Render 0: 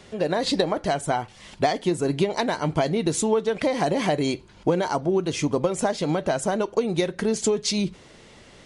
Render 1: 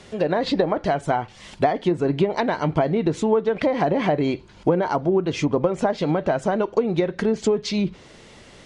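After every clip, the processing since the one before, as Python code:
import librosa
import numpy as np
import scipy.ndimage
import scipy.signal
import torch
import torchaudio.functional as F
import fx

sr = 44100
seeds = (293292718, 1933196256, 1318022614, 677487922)

y = fx.env_lowpass_down(x, sr, base_hz=1700.0, full_db=-18.0)
y = F.gain(torch.from_numpy(y), 2.5).numpy()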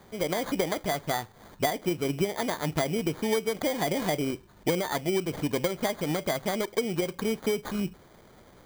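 y = fx.sample_hold(x, sr, seeds[0], rate_hz=2700.0, jitter_pct=0)
y = F.gain(torch.from_numpy(y), -7.5).numpy()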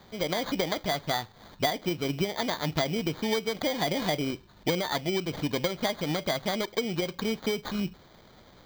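y = fx.graphic_eq_15(x, sr, hz=(400, 4000, 10000), db=(-3, 8, -10))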